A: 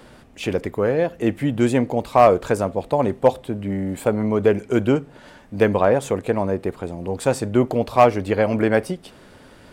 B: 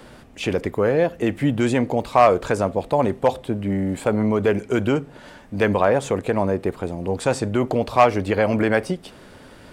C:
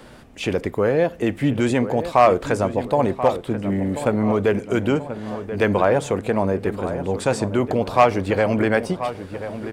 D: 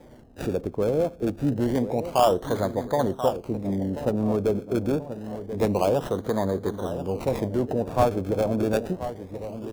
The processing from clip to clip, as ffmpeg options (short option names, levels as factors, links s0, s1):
-filter_complex "[0:a]acrossover=split=9200[s0][s1];[s1]acompressor=threshold=0.00158:ratio=4:attack=1:release=60[s2];[s0][s2]amix=inputs=2:normalize=0,acrossover=split=780[s3][s4];[s3]alimiter=limit=0.211:level=0:latency=1[s5];[s5][s4]amix=inputs=2:normalize=0,volume=1.26"
-filter_complex "[0:a]asplit=2[s0][s1];[s1]adelay=1034,lowpass=f=2300:p=1,volume=0.282,asplit=2[s2][s3];[s3]adelay=1034,lowpass=f=2300:p=1,volume=0.5,asplit=2[s4][s5];[s5]adelay=1034,lowpass=f=2300:p=1,volume=0.5,asplit=2[s6][s7];[s7]adelay=1034,lowpass=f=2300:p=1,volume=0.5,asplit=2[s8][s9];[s9]adelay=1034,lowpass=f=2300:p=1,volume=0.5[s10];[s0][s2][s4][s6][s8][s10]amix=inputs=6:normalize=0"
-filter_complex "[0:a]lowpass=f=6200:t=q:w=2.8,acrossover=split=560|940[s0][s1][s2];[s2]acrusher=samples=31:mix=1:aa=0.000001:lfo=1:lforange=31:lforate=0.27[s3];[s0][s1][s3]amix=inputs=3:normalize=0,volume=0.596"